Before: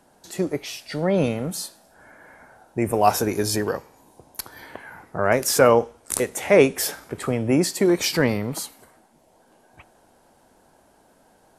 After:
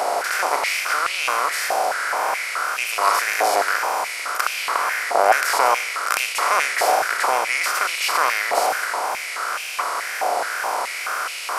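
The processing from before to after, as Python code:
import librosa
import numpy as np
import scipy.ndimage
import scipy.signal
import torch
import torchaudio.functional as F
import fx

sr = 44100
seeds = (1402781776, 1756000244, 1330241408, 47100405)

y = fx.bin_compress(x, sr, power=0.2)
y = fx.wow_flutter(y, sr, seeds[0], rate_hz=2.1, depth_cents=78.0)
y = fx.filter_held_highpass(y, sr, hz=4.7, low_hz=770.0, high_hz=2600.0)
y = F.gain(torch.from_numpy(y), -9.0).numpy()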